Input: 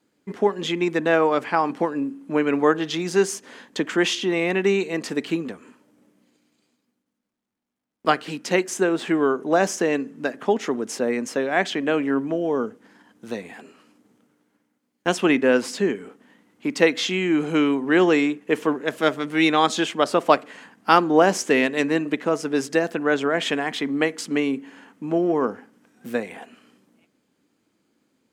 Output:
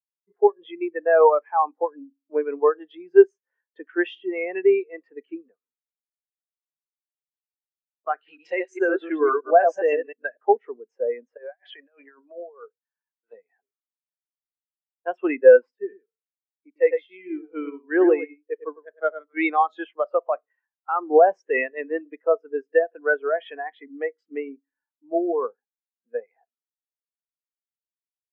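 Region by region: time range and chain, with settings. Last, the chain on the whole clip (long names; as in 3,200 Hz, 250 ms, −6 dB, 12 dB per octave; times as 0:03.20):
0:08.17–0:10.37: delay that plays each chunk backwards 103 ms, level −3 dB + high-shelf EQ 2,200 Hz +8.5 dB
0:11.37–0:13.33: meter weighting curve A + compressor whose output falls as the input rises −29 dBFS, ratio −0.5
0:15.71–0:19.37: single-tap delay 103 ms −5 dB + expander for the loud parts, over −25 dBFS
whole clip: three-way crossover with the lows and the highs turned down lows −16 dB, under 460 Hz, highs −12 dB, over 3,400 Hz; boost into a limiter +12.5 dB; every bin expanded away from the loudest bin 2.5 to 1; level −1 dB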